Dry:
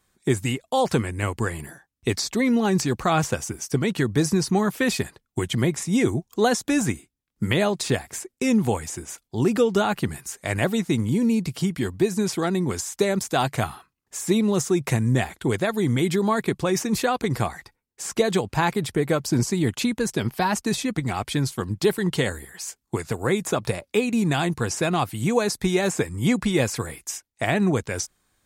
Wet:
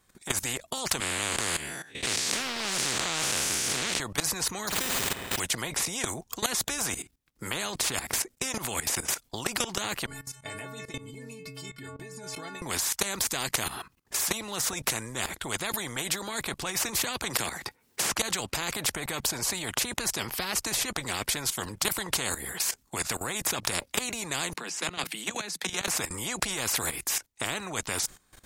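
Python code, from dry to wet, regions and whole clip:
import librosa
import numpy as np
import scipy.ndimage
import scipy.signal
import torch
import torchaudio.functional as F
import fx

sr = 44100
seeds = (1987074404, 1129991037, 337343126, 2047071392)

y = fx.chain(x, sr, fx.spec_blur(span_ms=142.0),
    fx.weighting(curve='D'),
    fx.doppler_dist(depth_ms=0.34), at=(1.0, 4.0))
y = fx.chain(y, sr, fx.room_flutter(wall_m=9.4, rt60_s=0.59),
    fx.resample_bad(factor=8, down='none', up='hold'),
    fx.pre_swell(db_per_s=150.0), at=(4.67, 5.4))
y = fx.chain(y, sr, fx.high_shelf(hz=9300.0, db=-9.0),
    fx.stiff_resonator(f0_hz=130.0, decay_s=0.66, stiffness=0.03), at=(10.06, 12.62))
y = fx.chain(y, sr, fx.highpass(hz=190.0, slope=6),
    fx.band_squash(depth_pct=70), at=(17.04, 18.19))
y = fx.chain(y, sr, fx.peak_eq(hz=2700.0, db=9.0, octaves=1.9),
    fx.level_steps(step_db=19),
    fx.steep_highpass(hz=160.0, slope=96), at=(24.53, 25.88))
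y = fx.dynamic_eq(y, sr, hz=6800.0, q=2.4, threshold_db=-44.0, ratio=4.0, max_db=5)
y = fx.level_steps(y, sr, step_db=17)
y = fx.spectral_comp(y, sr, ratio=4.0)
y = y * librosa.db_to_amplitude(4.0)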